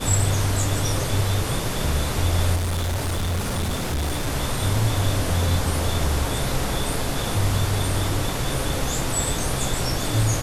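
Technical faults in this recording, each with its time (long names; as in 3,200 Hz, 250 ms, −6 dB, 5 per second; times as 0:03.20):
0:02.55–0:04.28: clipping −21 dBFS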